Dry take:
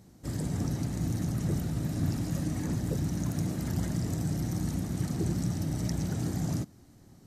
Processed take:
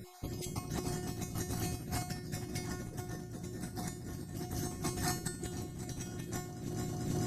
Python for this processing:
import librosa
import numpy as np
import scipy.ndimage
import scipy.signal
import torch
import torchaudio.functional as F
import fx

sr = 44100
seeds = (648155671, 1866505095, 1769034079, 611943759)

y = fx.spec_dropout(x, sr, seeds[0], share_pct=38)
y = fx.echo_heads(y, sr, ms=220, heads='first and second', feedback_pct=56, wet_db=-8.5)
y = fx.over_compress(y, sr, threshold_db=-41.0, ratio=-1.0)
y = fx.comb_fb(y, sr, f0_hz=360.0, decay_s=0.45, harmonics='all', damping=0.0, mix_pct=90)
y = y * librosa.db_to_amplitude(18.0)